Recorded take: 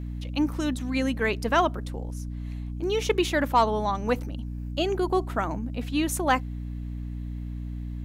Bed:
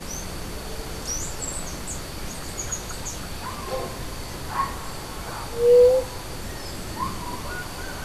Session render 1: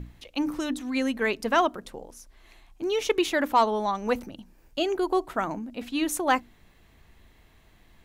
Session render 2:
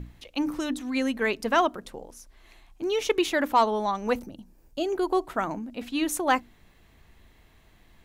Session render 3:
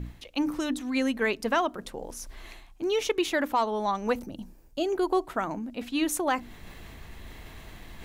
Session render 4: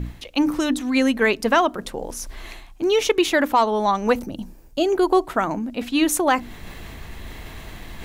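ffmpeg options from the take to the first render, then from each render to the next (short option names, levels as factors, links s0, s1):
-af "bandreject=f=60:t=h:w=6,bandreject=f=120:t=h:w=6,bandreject=f=180:t=h:w=6,bandreject=f=240:t=h:w=6,bandreject=f=300:t=h:w=6"
-filter_complex "[0:a]asettb=1/sr,asplit=3[s0][s1][s2];[s0]atrim=end=4.194[s3];[s1]atrim=start=4.19:end=4.93,asetpts=PTS-STARTPTS,afade=t=in:d=0.004:c=qsin,afade=t=out:st=0.736:d=0.004:c=qsin,equalizer=f=2100:w=0.57:g=-8.5[s4];[s2]atrim=start=4.926[s5];[s3][s4]acrossfade=d=0.004:c1=hsin:c2=qsin[s6];[s6][s5]acrossfade=d=0.004:c1=qsin:c2=hsin"
-af "areverse,acompressor=mode=upward:threshold=0.0282:ratio=2.5,areverse,alimiter=limit=0.168:level=0:latency=1:release=315"
-af "volume=2.51"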